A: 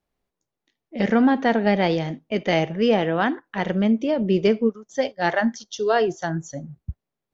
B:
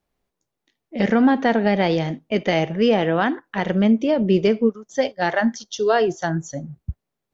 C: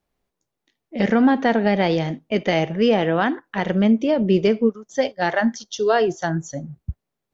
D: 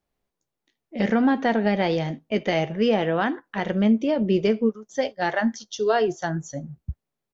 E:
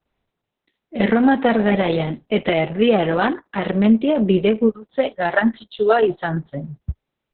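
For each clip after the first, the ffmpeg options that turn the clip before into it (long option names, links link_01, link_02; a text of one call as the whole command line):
ffmpeg -i in.wav -af "alimiter=limit=-10.5dB:level=0:latency=1:release=154,volume=3dB" out.wav
ffmpeg -i in.wav -af anull out.wav
ffmpeg -i in.wav -filter_complex "[0:a]asplit=2[link_01][link_02];[link_02]adelay=14,volume=-13.5dB[link_03];[link_01][link_03]amix=inputs=2:normalize=0,volume=-3.5dB" out.wav
ffmpeg -i in.wav -af "volume=5.5dB" -ar 48000 -c:a libopus -b:a 6k out.opus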